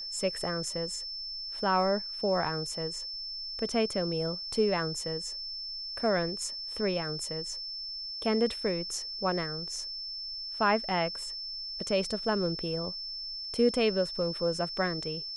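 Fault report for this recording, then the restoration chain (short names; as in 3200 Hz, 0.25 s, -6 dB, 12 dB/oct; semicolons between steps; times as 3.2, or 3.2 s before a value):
tone 5300 Hz -36 dBFS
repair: notch 5300 Hz, Q 30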